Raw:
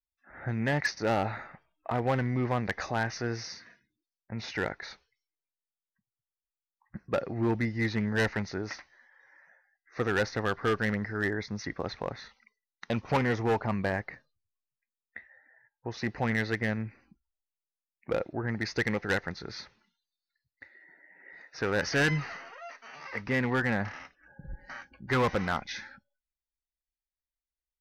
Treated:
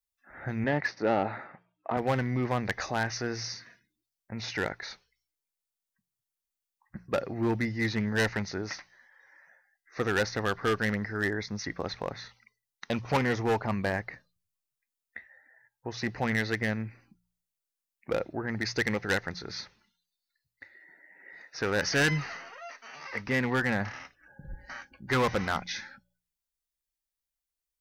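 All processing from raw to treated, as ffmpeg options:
-filter_complex "[0:a]asettb=1/sr,asplit=3[s0][s1][s2];[s0]atrim=end=0.644[s3];[s1]atrim=start=0.64:end=1.97,asetpts=PTS-STARTPTS,afade=t=in:d=0.004:c=qsin,afade=t=out:st=1.326:d=0.004:c=qsin,highpass=300,lowpass=4900,aemphasis=mode=reproduction:type=riaa[s4];[s2]atrim=start=1.966[s5];[s3][s4]acrossfade=d=0.004:c1=hsin:c2=qsin[s6];[s6][s5]acrossfade=d=0.004:c1=qsin:c2=hsin,highshelf=f=4500:g=7.5,bandreject=f=59.06:t=h:w=4,bandreject=f=118.12:t=h:w=4,bandreject=f=177.18:t=h:w=4"

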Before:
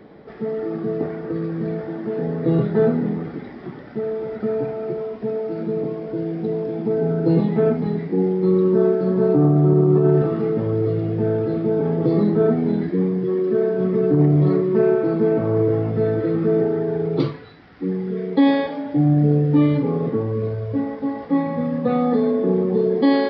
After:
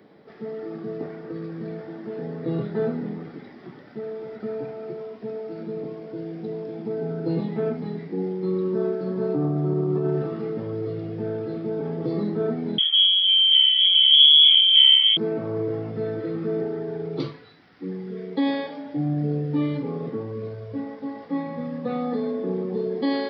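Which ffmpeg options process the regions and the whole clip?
-filter_complex "[0:a]asettb=1/sr,asplit=3[s0][s1][s2];[s0]atrim=end=12.784[s3];[s1]atrim=start=12.78:end=15.17,asetpts=PTS-STARTPTS,afade=t=in:d=0.004:c=qsin,afade=t=out:st=2.386:d=0.004:c=qsin,equalizer=f=430:w=1.5:g=7,aecho=1:1:0.8:0.84,atrim=end_sample=105399,lowpass=f=3000:t=q:w=0.5098,lowpass=f=3000:t=q:w=0.6013,lowpass=f=3000:t=q:w=0.9,lowpass=f=3000:t=q:w=2.563,afreqshift=-3500[s4];[s2]atrim=start=15.166[s5];[s3][s4]acrossfade=d=0.004:c1=hsin:c2=qsin[s6];[s6][s5]acrossfade=d=0.004:c1=qsin:c2=hsin,highpass=110,highshelf=f=3600:g=10,volume=0.398"

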